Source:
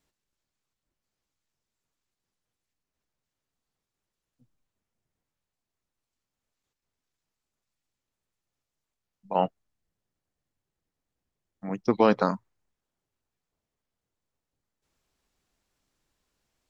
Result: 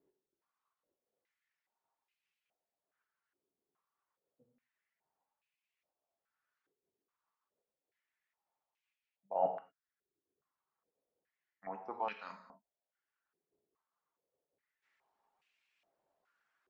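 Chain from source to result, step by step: reverse; compressor 8:1, threshold -35 dBFS, peak gain reduction 20 dB; reverse; reverb removal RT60 0.83 s; non-linear reverb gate 0.26 s falling, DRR 3.5 dB; stepped band-pass 2.4 Hz 380–2500 Hz; gain +10.5 dB

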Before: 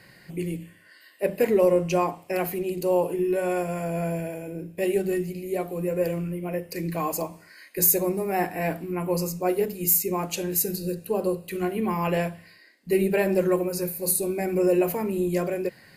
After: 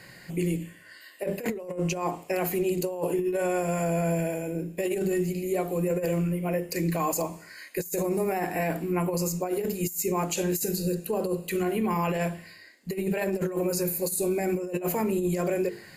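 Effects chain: bell 7100 Hz +9 dB 0.21 oct; notches 50/100/150/200/250/300/350/400/450 Hz; negative-ratio compressor -26 dBFS, ratio -0.5; limiter -20 dBFS, peak gain reduction 7.5 dB; gain +1.5 dB

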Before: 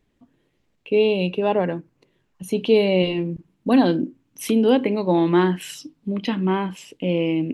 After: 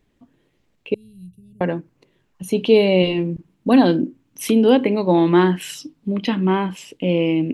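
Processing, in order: 0.94–1.61 Chebyshev band-stop 110–9100 Hz, order 3; gain +3 dB

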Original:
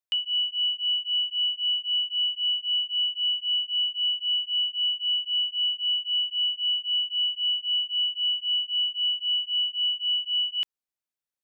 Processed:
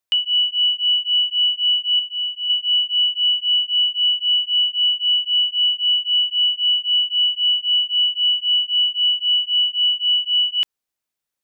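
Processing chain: 1.99–2.5 bell 2800 Hz -6.5 dB; gain +8 dB

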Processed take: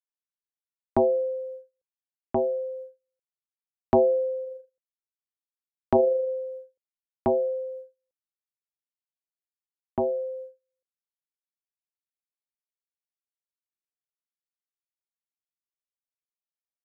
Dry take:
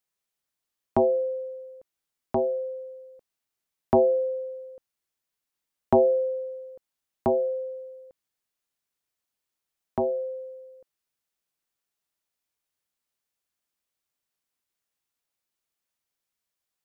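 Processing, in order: 4.44–6.29 AM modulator 25 Hz, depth 15%; gate -39 dBFS, range -38 dB

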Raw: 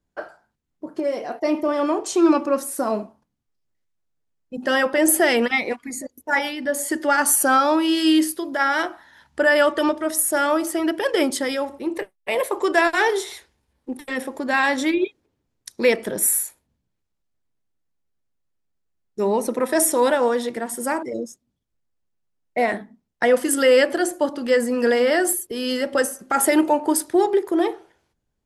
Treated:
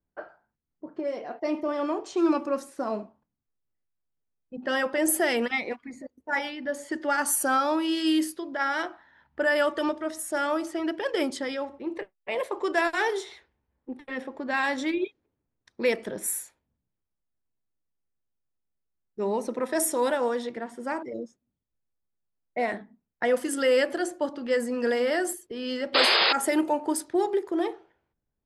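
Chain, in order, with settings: low-pass opened by the level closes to 1900 Hz, open at -13.5 dBFS; painted sound noise, 25.94–26.33, 330–5100 Hz -14 dBFS; gain -7 dB

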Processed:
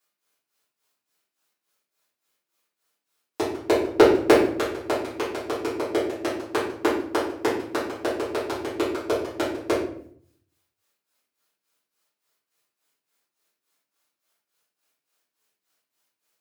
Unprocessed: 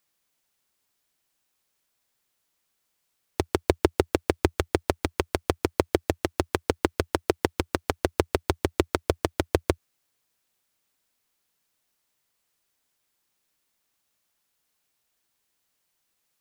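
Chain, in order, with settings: HPF 210 Hz 12 dB/oct; 3.84–4.39 transient shaper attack +7 dB, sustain 0 dB; tremolo 3.5 Hz, depth 93%; shoebox room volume 88 m³, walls mixed, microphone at 3.1 m; gain -7.5 dB

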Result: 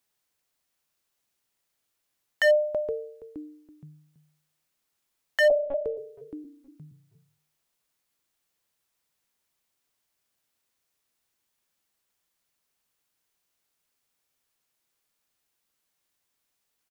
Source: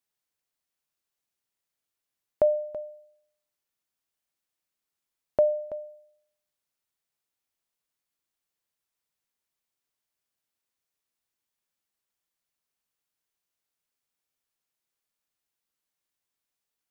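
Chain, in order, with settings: 5.5–5.97 monotone LPC vocoder at 8 kHz 280 Hz; frequency-shifting echo 0.47 s, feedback 40%, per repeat -150 Hz, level -18 dB; wavefolder -21.5 dBFS; gain +7.5 dB

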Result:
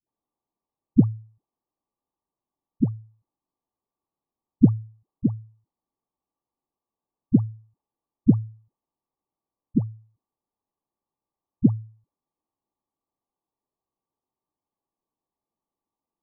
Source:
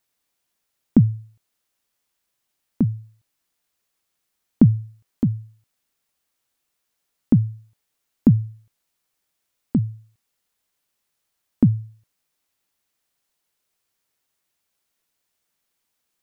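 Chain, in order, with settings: rippled Chebyshev low-pass 1200 Hz, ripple 6 dB; dispersion highs, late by 89 ms, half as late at 500 Hz

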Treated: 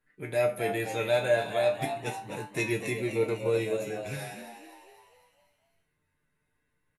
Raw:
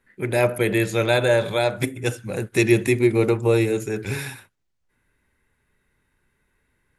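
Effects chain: resonator 150 Hz, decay 0.25 s, harmonics all, mix 90%; frequency-shifting echo 0.252 s, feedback 52%, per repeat +89 Hz, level -9.5 dB

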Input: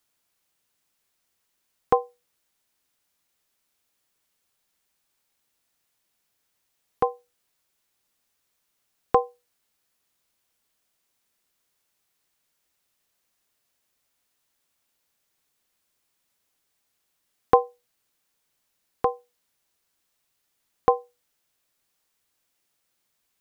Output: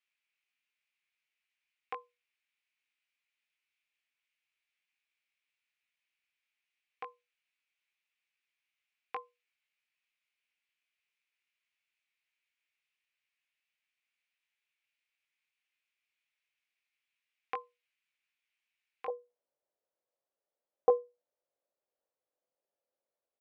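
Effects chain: band-pass 2400 Hz, Q 4.1, from 19.08 s 550 Hz; doubler 20 ms -6 dB

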